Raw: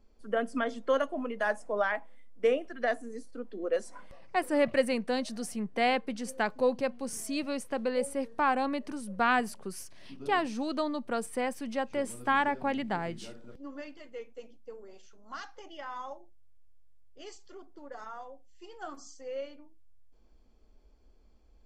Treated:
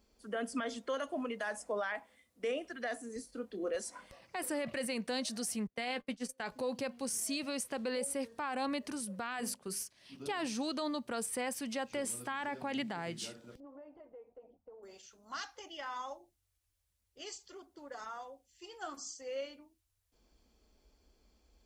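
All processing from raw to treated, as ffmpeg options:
ffmpeg -i in.wav -filter_complex "[0:a]asettb=1/sr,asplit=3[link_01][link_02][link_03];[link_01]atrim=end=3.164[link_04];[link_02]atrim=start=3.16:end=3.75,asetpts=PTS-STARTPTS,afade=type=in:duration=0.004:curve=qsin,afade=type=out:start_time=0.586:duration=0.004:curve=qsin,lowshelf=frequency=150:gain=8,asplit=2[link_05][link_06];[link_06]adelay=27,volume=-11dB[link_07];[link_05][link_07]amix=inputs=2:normalize=0,atrim=end_sample=26019[link_08];[link_03]atrim=start=3.746[link_09];[link_04][link_08]acrossfade=duration=0.004:curve1=hsin:curve2=qsin[link_10];[link_10][link_09]acrossfade=duration=0.004:curve1=qsin:curve2=hsin,asettb=1/sr,asplit=3[link_11][link_12][link_13];[link_11]atrim=end=5.674[link_14];[link_12]atrim=start=5.67:end=6.52,asetpts=PTS-STARTPTS,afade=type=in:duration=0.004:curve=qsin,afade=type=out:start_time=0.846:duration=0.004:curve=qsin,bandreject=frequency=289.7:width_type=h:width=4,bandreject=frequency=579.4:width_type=h:width=4,bandreject=frequency=869.1:width_type=h:width=4,bandreject=frequency=1158.8:width_type=h:width=4,bandreject=frequency=1448.5:width_type=h:width=4,agate=range=-23dB:threshold=-37dB:ratio=16:release=100:detection=peak,asplit=2[link_15][link_16];[link_16]adelay=12,volume=-12dB[link_17];[link_15][link_17]amix=inputs=2:normalize=0,atrim=end_sample=37485[link_18];[link_13]atrim=start=6.516[link_19];[link_14][link_18]acrossfade=duration=0.004:curve1=hsin:curve2=qsin[link_20];[link_20][link_19]acrossfade=duration=0.004:curve1=qsin:curve2=hsin,asettb=1/sr,asplit=3[link_21][link_22][link_23];[link_21]atrim=end=9.324[link_24];[link_22]atrim=start=9.32:end=10.14,asetpts=PTS-STARTPTS,afade=type=in:duration=0.004:curve=qsin,afade=type=out:start_time=0.816:duration=0.004:curve=qsin,bandreject=frequency=50:width_type=h:width=6,bandreject=frequency=100:width_type=h:width=6,bandreject=frequency=150:width_type=h:width=6,bandreject=frequency=200:width_type=h:width=6,bandreject=frequency=250:width_type=h:width=6,bandreject=frequency=300:width_type=h:width=6,bandreject=frequency=350:width_type=h:width=6,bandreject=frequency=400:width_type=h:width=6,bandreject=frequency=450:width_type=h:width=6,bandreject=frequency=500:width_type=h:width=6,agate=range=-33dB:threshold=-41dB:ratio=3:release=100:detection=peak,acompressor=threshold=-30dB:ratio=2:attack=3.2:release=140:knee=1:detection=peak[link_25];[link_23]atrim=start=10.136[link_26];[link_24][link_25]acrossfade=duration=0.004:curve1=hsin:curve2=qsin[link_27];[link_27][link_26]acrossfade=duration=0.004:curve1=qsin:curve2=hsin,asettb=1/sr,asplit=3[link_28][link_29][link_30];[link_28]atrim=end=13.604[link_31];[link_29]atrim=start=13.6:end=14.83,asetpts=PTS-STARTPTS,afade=type=in:duration=0.004:curve=qsin,afade=type=out:start_time=1.226:duration=0.004:curve=qsin,lowpass=frequency=780:width_type=q:width=2.7,equalizer=frequency=230:width_type=o:width=0.22:gain=-7.5,acompressor=threshold=-47dB:ratio=5:attack=3.2:release=140:knee=1:detection=peak[link_32];[link_30]atrim=start=14.826[link_33];[link_31][link_32]acrossfade=duration=0.004:curve1=hsin:curve2=qsin[link_34];[link_34][link_33]acrossfade=duration=0.004:curve1=qsin:curve2=hsin,highpass=44,highshelf=frequency=2500:gain=11,alimiter=level_in=0.5dB:limit=-24dB:level=0:latency=1:release=44,volume=-0.5dB,volume=-3dB" out.wav

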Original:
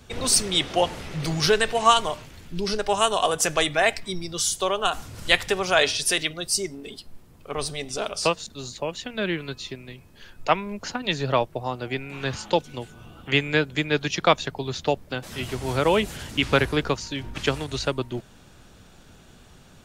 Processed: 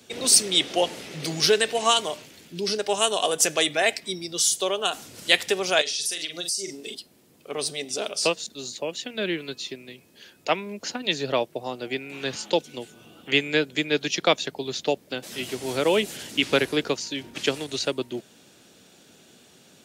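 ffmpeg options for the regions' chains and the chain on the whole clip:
ffmpeg -i in.wav -filter_complex "[0:a]asettb=1/sr,asplit=3[link_01][link_02][link_03];[link_01]atrim=end=5.814[link_04];[link_02]atrim=start=5.81:end=6.95,asetpts=PTS-STARTPTS,afade=type=in:duration=0.004:curve=qsin,afade=type=out:start_time=1.136:duration=0.004:curve=qsin,equalizer=frequency=6100:width=0.69:gain=8.5,asplit=2[link_05][link_06];[link_06]adelay=41,volume=-9dB[link_07];[link_05][link_07]amix=inputs=2:normalize=0,atrim=end_sample=50274,acompressor=threshold=-27dB:ratio=8:attack=3.2:release=140:knee=1:detection=peak[link_08];[link_03]atrim=start=6.946[link_09];[link_04][link_08]acrossfade=duration=0.004:curve1=hsin:curve2=qsin[link_10];[link_10][link_09]acrossfade=duration=0.004:curve1=qsin:curve2=hsin,highpass=280,equalizer=frequency=1100:width_type=o:width=1.6:gain=-10,volume=3.5dB" out.wav

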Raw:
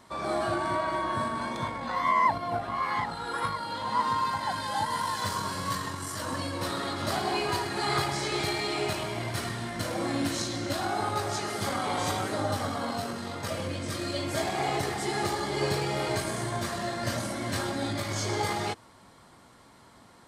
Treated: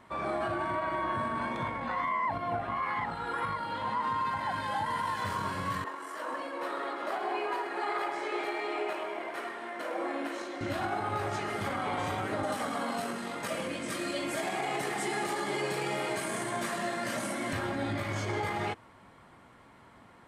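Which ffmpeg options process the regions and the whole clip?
ffmpeg -i in.wav -filter_complex "[0:a]asettb=1/sr,asplit=3[link_01][link_02][link_03];[link_01]atrim=end=5.844[link_04];[link_02]atrim=start=5.84:end=10.61,asetpts=PTS-STARTPTS,afade=type=in:duration=0.004:curve=qsin,afade=type=out:start_time=4.766:duration=0.004:curve=qsin,highpass=frequency=340:width=0.5412,highpass=frequency=340:width=1.3066,adynamicequalizer=threshold=0.00562:dfrequency=1900:dqfactor=0.7:tfrequency=1900:tqfactor=0.7:attack=5:release=100:ratio=0.375:range=3.5:mode=cutabove:tftype=highshelf[link_05];[link_03]atrim=start=10.606[link_06];[link_04][link_05]acrossfade=duration=0.004:curve1=hsin:curve2=qsin[link_07];[link_07][link_06]acrossfade=duration=0.004:curve1=qsin:curve2=hsin,asettb=1/sr,asplit=3[link_08][link_09][link_10];[link_08]atrim=end=12.434[link_11];[link_09]atrim=start=12.43:end=17.53,asetpts=PTS-STARTPTS,afade=type=in:duration=0.004:curve=qsin,afade=type=out:start_time=5.096:duration=0.004:curve=qsin,highpass=frequency=160:width=0.5412,highpass=frequency=160:width=1.3066,equalizer=frequency=9300:width=0.56:gain=11[link_12];[link_10]atrim=start=17.526[link_13];[link_11][link_12]acrossfade=duration=0.004:curve1=hsin:curve2=qsin[link_14];[link_14][link_13]acrossfade=duration=0.004:curve1=qsin:curve2=hsin,highshelf=frequency=3400:width_type=q:width=1.5:gain=-8.5,alimiter=limit=-22.5dB:level=0:latency=1:release=46,volume=-1dB" out.wav

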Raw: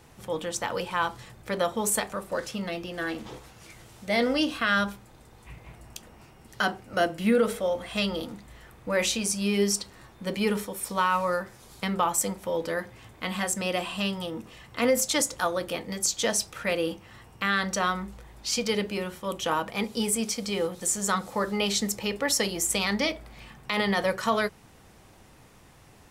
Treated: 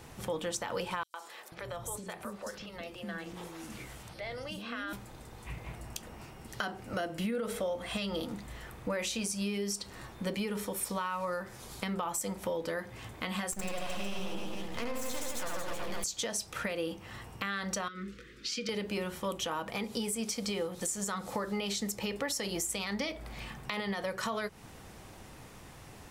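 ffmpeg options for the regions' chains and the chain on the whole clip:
ffmpeg -i in.wav -filter_complex "[0:a]asettb=1/sr,asplit=3[link_01][link_02][link_03];[link_01]atrim=end=1.034[link_04];[link_02]atrim=start=1.03:end=4.93,asetpts=PTS-STARTPTS,afade=type=in:duration=0.004:curve=qsin,afade=type=out:start_time=3.896:duration=0.004:curve=qsin,acompressor=threshold=-44dB:ratio=3:attack=3.2:release=140:knee=1:detection=peak,acrossover=split=370|5100[link_05][link_06][link_07];[link_06]adelay=110[link_08];[link_05]adelay=490[link_09];[link_09][link_08][link_07]amix=inputs=3:normalize=0,atrim=end_sample=171990[link_10];[link_03]atrim=start=4.926[link_11];[link_04][link_10]acrossfade=duration=0.004:curve1=hsin:curve2=qsin[link_12];[link_12][link_11]acrossfade=duration=0.004:curve1=qsin:curve2=hsin,asettb=1/sr,asplit=3[link_13][link_14][link_15];[link_13]atrim=end=13.524[link_16];[link_14]atrim=start=13.52:end=16.04,asetpts=PTS-STARTPTS,afade=type=in:duration=0.004:curve=qsin,afade=type=out:start_time=2.516:duration=0.004:curve=qsin,aeval=exprs='max(val(0),0)':channel_layout=same,aecho=1:1:70|154|254.8|375.8|520.9:0.794|0.631|0.501|0.398|0.316,atrim=end_sample=111132[link_17];[link_15]atrim=start=16.036[link_18];[link_16][link_17]acrossfade=duration=0.004:curve1=hsin:curve2=qsin[link_19];[link_19][link_18]acrossfade=duration=0.004:curve1=qsin:curve2=hsin,asettb=1/sr,asplit=3[link_20][link_21][link_22];[link_20]atrim=end=17.884[link_23];[link_21]atrim=start=17.88:end=18.69,asetpts=PTS-STARTPTS,afade=type=in:duration=0.004:curve=qsin,afade=type=out:start_time=0.806:duration=0.004:curve=qsin,acompressor=threshold=-33dB:ratio=2.5:attack=3.2:release=140:knee=1:detection=peak,asuperstop=centerf=790:order=8:qfactor=1,acrossover=split=190 6000:gain=0.178 1 0.178[link_24][link_25][link_26];[link_24][link_25][link_26]amix=inputs=3:normalize=0[link_27];[link_22]atrim=start=18.686[link_28];[link_23][link_27]acrossfade=duration=0.004:curve1=hsin:curve2=qsin[link_29];[link_29][link_28]acrossfade=duration=0.004:curve1=qsin:curve2=hsin,alimiter=limit=-20dB:level=0:latency=1:release=163,acompressor=threshold=-37dB:ratio=3,volume=3.5dB" out.wav

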